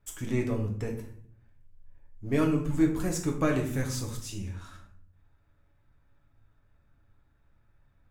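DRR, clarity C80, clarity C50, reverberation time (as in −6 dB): 0.5 dB, 11.5 dB, 7.5 dB, 0.60 s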